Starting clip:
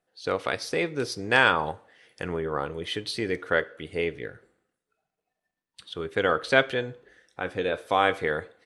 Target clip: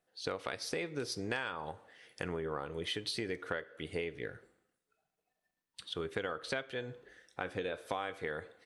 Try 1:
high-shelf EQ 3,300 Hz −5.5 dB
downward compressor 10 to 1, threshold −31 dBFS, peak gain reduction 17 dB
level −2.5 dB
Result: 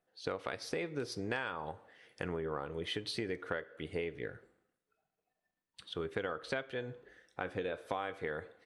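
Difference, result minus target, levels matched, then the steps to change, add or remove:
8,000 Hz band −4.5 dB
change: high-shelf EQ 3,300 Hz +2.5 dB

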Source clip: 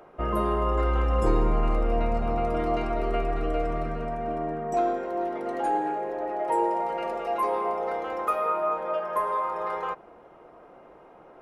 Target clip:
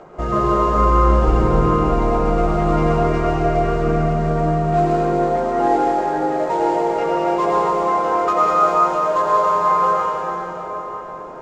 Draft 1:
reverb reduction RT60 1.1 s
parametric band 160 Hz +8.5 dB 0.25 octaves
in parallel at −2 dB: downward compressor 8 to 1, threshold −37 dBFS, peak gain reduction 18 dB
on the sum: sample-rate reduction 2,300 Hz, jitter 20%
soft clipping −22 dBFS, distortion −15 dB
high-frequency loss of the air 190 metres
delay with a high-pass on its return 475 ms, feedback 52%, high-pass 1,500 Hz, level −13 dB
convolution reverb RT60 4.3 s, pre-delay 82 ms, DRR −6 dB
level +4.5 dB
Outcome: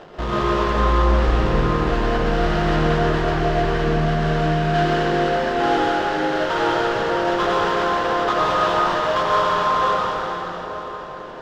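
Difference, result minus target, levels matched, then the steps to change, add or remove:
soft clipping: distortion +14 dB; sample-rate reduction: distortion +11 dB
change: sample-rate reduction 8,200 Hz, jitter 20%
change: soft clipping −12.5 dBFS, distortion −28 dB

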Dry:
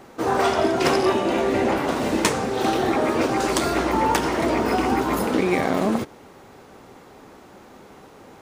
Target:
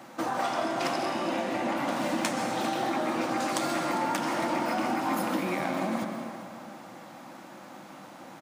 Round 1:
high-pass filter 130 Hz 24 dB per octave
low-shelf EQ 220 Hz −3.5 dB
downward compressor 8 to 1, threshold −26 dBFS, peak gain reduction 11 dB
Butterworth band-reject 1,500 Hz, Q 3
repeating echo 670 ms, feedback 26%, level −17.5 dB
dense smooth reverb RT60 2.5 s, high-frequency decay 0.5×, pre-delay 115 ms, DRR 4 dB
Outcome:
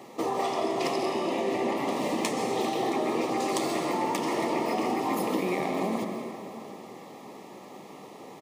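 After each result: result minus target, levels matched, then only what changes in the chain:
echo 268 ms late; 2,000 Hz band −3.5 dB
change: repeating echo 402 ms, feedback 26%, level −17.5 dB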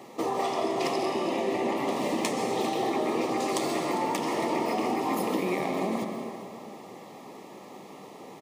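2,000 Hz band −3.5 dB
change: Butterworth band-reject 420 Hz, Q 3

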